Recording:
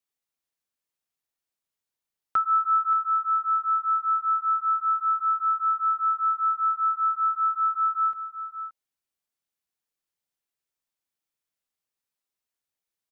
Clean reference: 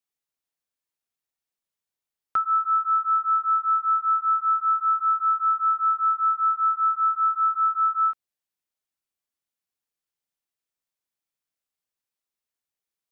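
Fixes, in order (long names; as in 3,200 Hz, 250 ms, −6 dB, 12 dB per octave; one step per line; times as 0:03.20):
echo removal 576 ms −13 dB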